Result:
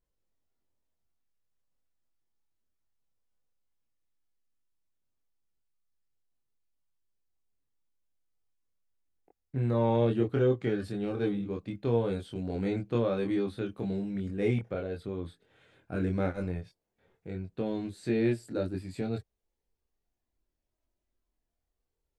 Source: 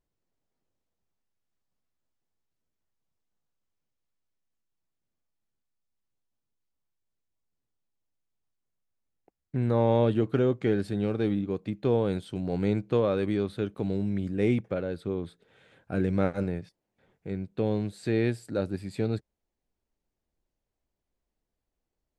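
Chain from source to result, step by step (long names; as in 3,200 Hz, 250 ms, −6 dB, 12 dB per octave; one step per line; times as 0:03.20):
multi-voice chorus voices 6, 0.1 Hz, delay 24 ms, depth 2.2 ms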